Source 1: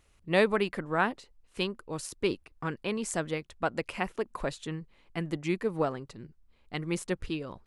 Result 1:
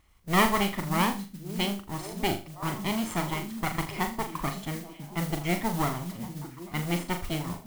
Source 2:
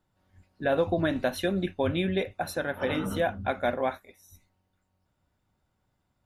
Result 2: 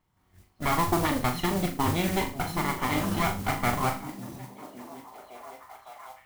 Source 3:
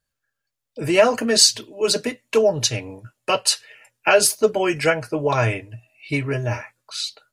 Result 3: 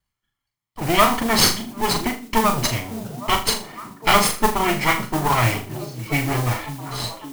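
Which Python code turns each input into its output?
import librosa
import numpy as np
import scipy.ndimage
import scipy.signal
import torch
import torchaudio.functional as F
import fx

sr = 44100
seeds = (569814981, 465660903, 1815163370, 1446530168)

p1 = fx.lower_of_two(x, sr, delay_ms=0.95)
p2 = fx.bass_treble(p1, sr, bass_db=-1, treble_db=-7)
p3 = p2 + fx.echo_stepped(p2, sr, ms=557, hz=180.0, octaves=0.7, feedback_pct=70, wet_db=-7.0, dry=0)
p4 = fx.mod_noise(p3, sr, seeds[0], snr_db=13)
p5 = fx.room_flutter(p4, sr, wall_m=6.9, rt60_s=0.32)
y = F.gain(torch.from_numpy(p5), 3.0).numpy()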